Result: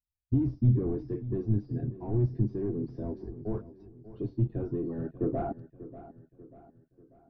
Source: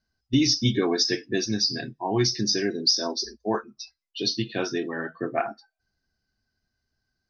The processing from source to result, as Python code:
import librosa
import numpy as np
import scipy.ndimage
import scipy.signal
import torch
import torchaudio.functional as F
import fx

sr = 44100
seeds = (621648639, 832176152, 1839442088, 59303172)

y = fx.peak_eq(x, sr, hz=190.0, db=-12.5, octaves=0.86)
y = fx.leveller(y, sr, passes=5)
y = fx.filter_sweep_lowpass(y, sr, from_hz=160.0, to_hz=1900.0, start_s=4.98, end_s=6.91, q=0.76)
y = fx.echo_feedback(y, sr, ms=590, feedback_pct=46, wet_db=-15.5)
y = fx.band_squash(y, sr, depth_pct=40, at=(2.88, 3.42))
y = y * librosa.db_to_amplitude(-2.5)